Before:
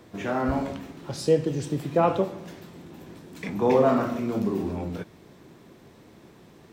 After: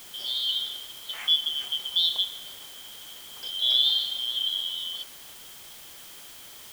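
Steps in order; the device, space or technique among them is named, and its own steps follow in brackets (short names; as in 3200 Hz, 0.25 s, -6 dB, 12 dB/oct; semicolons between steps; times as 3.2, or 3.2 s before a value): split-band scrambled radio (four-band scrambler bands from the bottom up 3412; BPF 400–3400 Hz; white noise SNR 16 dB)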